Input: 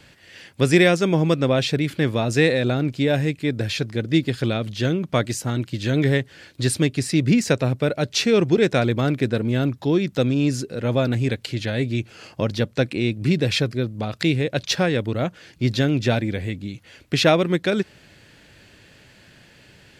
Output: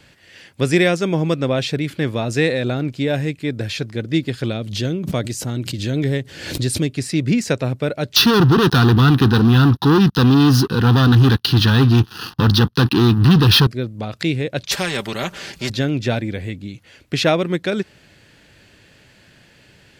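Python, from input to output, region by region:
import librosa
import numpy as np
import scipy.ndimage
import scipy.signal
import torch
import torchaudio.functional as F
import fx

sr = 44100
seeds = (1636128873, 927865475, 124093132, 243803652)

y = fx.chain(x, sr, fx.peak_eq(hz=1400.0, db=-6.0, octaves=2.2),
    fx.pre_swell(db_per_s=65.0), at=(4.52, 6.9))
y = fx.chain(y, sr, fx.leveller(passes=5),
    fx.highpass(hz=51.0, slope=12),
    fx.fixed_phaser(hz=2200.0, stages=6), at=(8.16, 13.67))
y = fx.chain(y, sr, fx.comb(ms=5.1, depth=0.65),
    fx.spectral_comp(ratio=2.0), at=(14.71, 15.7))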